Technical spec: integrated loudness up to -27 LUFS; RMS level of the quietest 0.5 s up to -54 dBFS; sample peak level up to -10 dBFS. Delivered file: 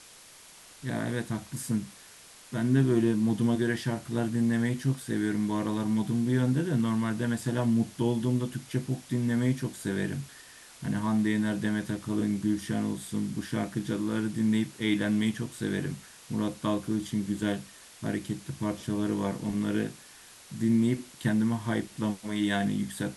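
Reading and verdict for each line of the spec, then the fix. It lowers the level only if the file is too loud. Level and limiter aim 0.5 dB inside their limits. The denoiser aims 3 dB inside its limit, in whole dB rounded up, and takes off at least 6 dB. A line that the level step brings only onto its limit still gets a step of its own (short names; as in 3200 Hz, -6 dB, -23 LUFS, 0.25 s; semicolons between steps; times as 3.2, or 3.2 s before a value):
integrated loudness -29.5 LUFS: OK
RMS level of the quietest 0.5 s -52 dBFS: fail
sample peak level -12.5 dBFS: OK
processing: denoiser 6 dB, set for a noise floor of -52 dBFS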